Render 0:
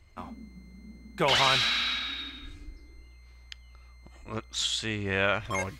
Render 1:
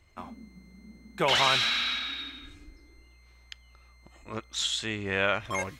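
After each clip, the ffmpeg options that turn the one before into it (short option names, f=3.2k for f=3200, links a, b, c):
-af "lowshelf=f=110:g=-7.5,bandreject=f=4.7k:w=14"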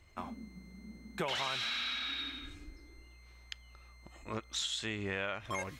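-af "acompressor=threshold=-34dB:ratio=5"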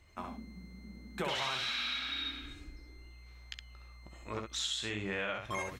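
-af "aecho=1:1:16|66:0.282|0.596,volume=-1dB"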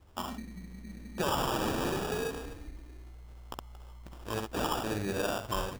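-af "acrusher=samples=21:mix=1:aa=0.000001,volume=4.5dB"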